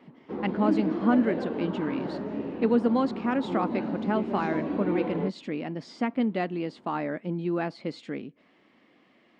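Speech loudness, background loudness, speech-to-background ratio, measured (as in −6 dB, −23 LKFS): −29.5 LKFS, −32.0 LKFS, 2.5 dB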